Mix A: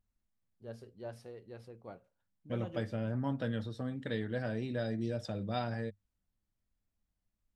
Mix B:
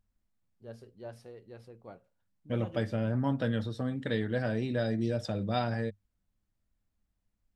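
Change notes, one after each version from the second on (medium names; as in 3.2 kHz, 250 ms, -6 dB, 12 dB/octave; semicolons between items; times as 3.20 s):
second voice +5.0 dB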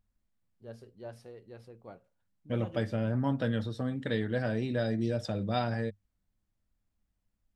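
no change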